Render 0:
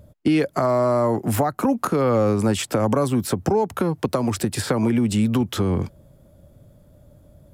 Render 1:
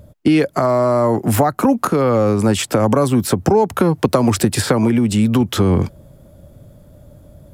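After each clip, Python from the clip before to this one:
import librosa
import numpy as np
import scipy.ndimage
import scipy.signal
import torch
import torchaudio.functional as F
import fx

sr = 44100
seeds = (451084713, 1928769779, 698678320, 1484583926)

y = fx.rider(x, sr, range_db=10, speed_s=0.5)
y = y * librosa.db_to_amplitude(5.5)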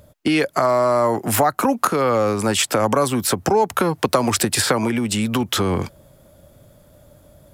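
y = fx.low_shelf(x, sr, hz=500.0, db=-12.0)
y = y * librosa.db_to_amplitude(3.0)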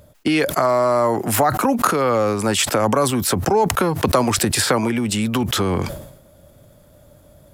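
y = fx.sustainer(x, sr, db_per_s=72.0)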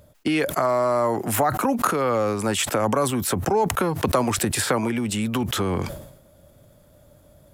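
y = fx.dynamic_eq(x, sr, hz=4800.0, q=2.3, threshold_db=-38.0, ratio=4.0, max_db=-5)
y = y * librosa.db_to_amplitude(-4.0)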